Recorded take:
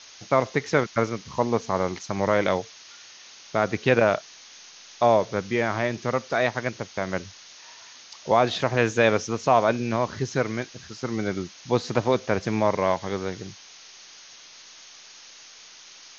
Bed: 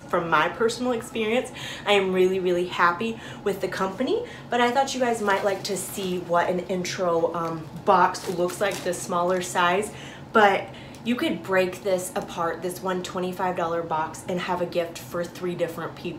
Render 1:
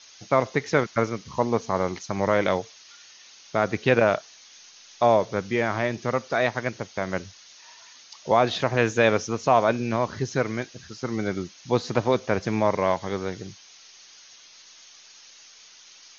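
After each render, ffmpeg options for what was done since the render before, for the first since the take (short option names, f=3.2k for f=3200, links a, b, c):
-af "afftdn=nr=6:nf=-48"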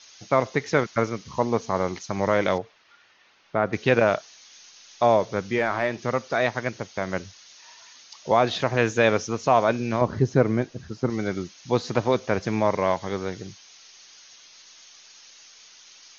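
-filter_complex "[0:a]asettb=1/sr,asplit=3[a][b][c];[a]atrim=end=2.584[d];[b]atrim=start=2.58:end=3.73,asetpts=PTS-STARTPTS,afade=t=in:d=0.004:c=qsin,afade=t=out:st=1.146:d=0.004:c=qsin,lowpass=2k[e];[c]atrim=start=3.726[f];[d][e]acrossfade=d=0.004:c1=hsin:c2=qsin[g];[g][f]acrossfade=d=0.004:c1=qsin:c2=hsin,asettb=1/sr,asplit=3[h][i][j];[h]atrim=end=5.584[k];[i]atrim=start=5.58:end=5.99,asetpts=PTS-STARTPTS,afade=t=in:d=0.004:c=qsin,afade=t=out:st=0.406:d=0.004:c=qsin,asplit=2[l][m];[m]highpass=f=720:p=1,volume=10dB,asoftclip=type=tanh:threshold=-10dB[n];[l][n]amix=inputs=2:normalize=0,lowpass=f=1.9k:p=1,volume=-6dB[o];[j]atrim=start=5.986[p];[k][o]acrossfade=d=0.004:c1=hsin:c2=qsin[q];[q][p]acrossfade=d=0.004:c1=qsin:c2=hsin,asettb=1/sr,asplit=3[r][s][t];[r]atrim=end=10.014[u];[s]atrim=start=10.01:end=11.1,asetpts=PTS-STARTPTS,afade=t=in:d=0.004:c=qsin,afade=t=out:st=1.086:d=0.004:c=qsin,tiltshelf=f=1.2k:g=7.5[v];[t]atrim=start=11.096[w];[u][v]acrossfade=d=0.004:c1=hsin:c2=qsin[x];[x][w]acrossfade=d=0.004:c1=qsin:c2=hsin"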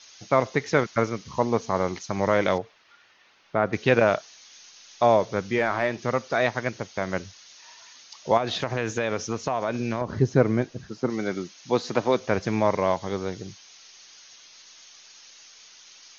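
-filter_complex "[0:a]asettb=1/sr,asplit=3[a][b][c];[a]atrim=end=8.374[d];[b]atrim=start=8.37:end=10.16,asetpts=PTS-STARTPTS,afade=t=in:d=0.004:c=qsin,afade=t=out:st=1.786:d=0.004:c=qsin,acompressor=threshold=-21dB:ratio=6:attack=3.2:release=140:knee=1:detection=peak[e];[c]atrim=start=10.156[f];[d][e]acrossfade=d=0.004:c1=hsin:c2=qsin[g];[g][f]acrossfade=d=0.004:c1=qsin:c2=hsin,asettb=1/sr,asplit=3[h][i][j];[h]atrim=end=10.854[k];[i]atrim=start=10.85:end=12.2,asetpts=PTS-STARTPTS,afade=t=in:d=0.004:c=qsin,afade=t=out:st=1.346:d=0.004:c=qsin,highpass=170[l];[j]atrim=start=12.196[m];[k][l]acrossfade=d=0.004:c1=hsin:c2=qsin[n];[n][m]acrossfade=d=0.004:c1=qsin:c2=hsin,asettb=1/sr,asplit=3[o][p][q];[o]atrim=end=12.804[r];[p]atrim=start=12.8:end=13.48,asetpts=PTS-STARTPTS,afade=t=in:d=0.004:c=qsin,afade=t=out:st=0.676:d=0.004:c=qsin,equalizer=f=1.8k:w=1.5:g=-4[s];[q]atrim=start=13.476[t];[r][s]acrossfade=d=0.004:c1=hsin:c2=qsin[u];[u][t]acrossfade=d=0.004:c1=qsin:c2=hsin"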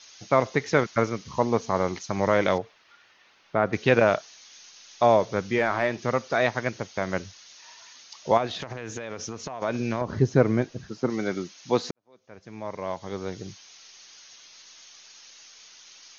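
-filter_complex "[0:a]asettb=1/sr,asplit=3[a][b][c];[a]atrim=end=8.464[d];[b]atrim=start=8.46:end=9.62,asetpts=PTS-STARTPTS,afade=t=in:d=0.004:c=qsin,afade=t=out:st=1.156:d=0.004:c=qsin,acompressor=threshold=-30dB:ratio=10:attack=3.2:release=140:knee=1:detection=peak[e];[c]atrim=start=9.616[f];[d][e]acrossfade=d=0.004:c1=hsin:c2=qsin[g];[g][f]acrossfade=d=0.004:c1=qsin:c2=hsin,asplit=2[h][i];[h]atrim=end=11.91,asetpts=PTS-STARTPTS,afade=t=out:st=11.906:d=0.004:c=hsin[j];[i]atrim=start=11.91,asetpts=PTS-STARTPTS,afade=t=in:d=1.58:c=qua[k];[j][k]concat=n=2:v=0:a=1"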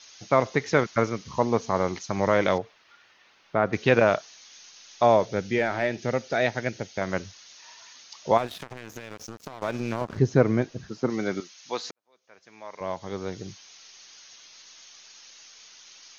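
-filter_complex "[0:a]asettb=1/sr,asplit=3[a][b][c];[a]atrim=end=5.264[d];[b]atrim=start=5.26:end=7.01,asetpts=PTS-STARTPTS,afade=t=in:d=0.004:c=qsin,afade=t=out:st=1.746:d=0.004:c=qsin,equalizer=f=1.1k:t=o:w=0.38:g=-13.5[e];[c]atrim=start=7.006[f];[d][e]acrossfade=d=0.004:c1=hsin:c2=qsin[g];[g][f]acrossfade=d=0.004:c1=qsin:c2=hsin,asplit=3[h][i][j];[h]afade=t=out:st=8.37:d=0.02[k];[i]aeval=exprs='sgn(val(0))*max(abs(val(0))-0.0133,0)':c=same,afade=t=in:st=8.37:d=0.02,afade=t=out:st=10.18:d=0.02[l];[j]afade=t=in:st=10.18:d=0.02[m];[k][l][m]amix=inputs=3:normalize=0,asettb=1/sr,asplit=3[n][o][p];[n]atrim=end=11.404[q];[o]atrim=start=11.4:end=12.81,asetpts=PTS-STARTPTS,afade=t=in:d=0.004:c=qsin,afade=t=out:st=1.406:d=0.004:c=qsin,highpass=f=1.2k:p=1[r];[p]atrim=start=12.806[s];[q][r]acrossfade=d=0.004:c1=hsin:c2=qsin[t];[t][s]acrossfade=d=0.004:c1=qsin:c2=hsin"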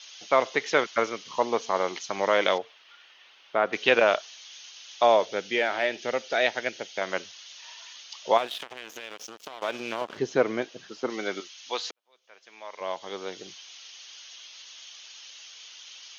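-af "highpass=400,equalizer=f=3.1k:t=o:w=0.56:g=10"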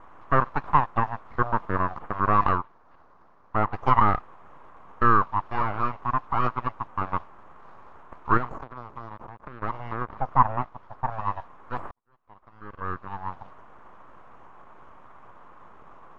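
-af "aeval=exprs='abs(val(0))':c=same,lowpass=f=1.1k:t=q:w=3.5"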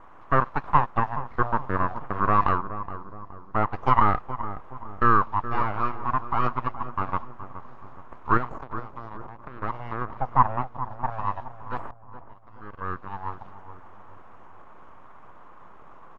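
-filter_complex "[0:a]asplit=2[a][b];[b]adelay=420,lowpass=f=1.1k:p=1,volume=-11dB,asplit=2[c][d];[d]adelay=420,lowpass=f=1.1k:p=1,volume=0.5,asplit=2[e][f];[f]adelay=420,lowpass=f=1.1k:p=1,volume=0.5,asplit=2[g][h];[h]adelay=420,lowpass=f=1.1k:p=1,volume=0.5,asplit=2[i][j];[j]adelay=420,lowpass=f=1.1k:p=1,volume=0.5[k];[a][c][e][g][i][k]amix=inputs=6:normalize=0"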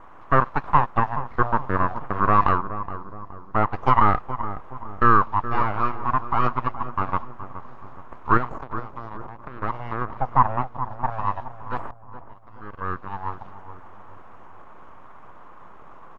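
-af "volume=3dB,alimiter=limit=-3dB:level=0:latency=1"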